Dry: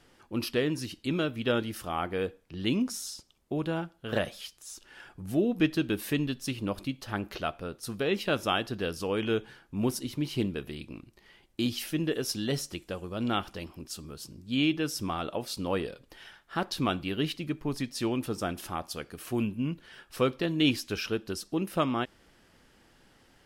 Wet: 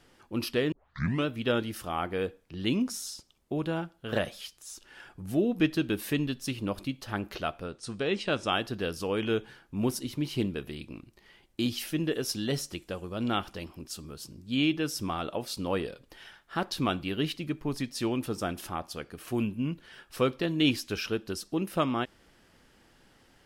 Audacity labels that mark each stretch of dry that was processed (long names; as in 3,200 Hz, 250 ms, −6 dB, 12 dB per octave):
0.720000	0.720000	tape start 0.54 s
7.660000	8.530000	Chebyshev low-pass filter 8,800 Hz, order 4
18.690000	19.280000	high-shelf EQ 4,500 Hz −5 dB